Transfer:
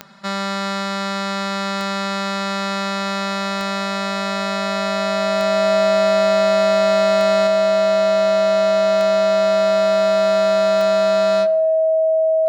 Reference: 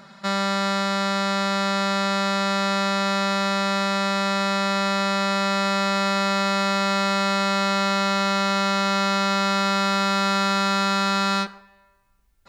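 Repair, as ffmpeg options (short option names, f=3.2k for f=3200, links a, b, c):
-af "adeclick=t=4,bandreject=f=640:w=30,asetnsamples=n=441:p=0,asendcmd='7.47 volume volume 3dB',volume=0dB"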